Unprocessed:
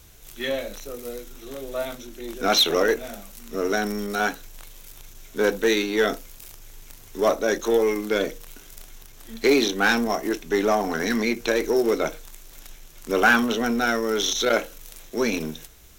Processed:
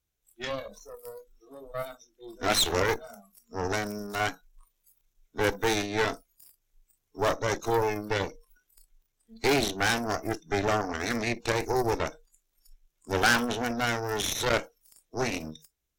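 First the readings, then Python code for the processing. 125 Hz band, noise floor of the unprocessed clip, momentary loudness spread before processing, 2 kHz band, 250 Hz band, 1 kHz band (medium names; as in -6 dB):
+5.0 dB, -47 dBFS, 18 LU, -5.5 dB, -8.0 dB, -3.0 dB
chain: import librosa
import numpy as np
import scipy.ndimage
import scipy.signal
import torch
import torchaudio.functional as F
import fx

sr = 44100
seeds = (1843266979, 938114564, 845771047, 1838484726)

y = fx.noise_reduce_blind(x, sr, reduce_db=25)
y = fx.cheby_harmonics(y, sr, harmonics=(4, 6), levels_db=(-9, -6), full_scale_db=-5.5)
y = y * librosa.db_to_amplitude(-7.5)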